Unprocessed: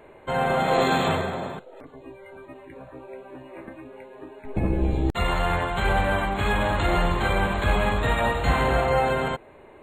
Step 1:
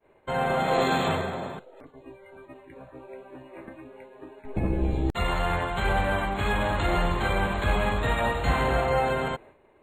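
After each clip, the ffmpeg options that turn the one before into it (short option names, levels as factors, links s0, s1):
-af "agate=range=0.0224:threshold=0.00891:ratio=3:detection=peak,volume=0.75"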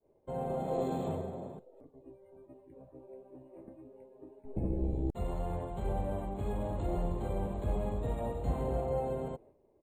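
-af "firequalizer=gain_entry='entry(510,0);entry(1500,-22);entry(8700,-6)':delay=0.05:min_phase=1,volume=0.447"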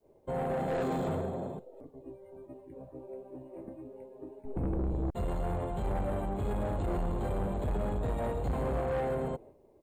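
-af "asoftclip=type=tanh:threshold=0.02,volume=2.11"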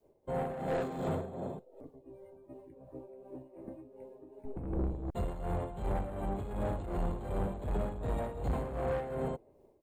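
-af "tremolo=f=2.7:d=0.65"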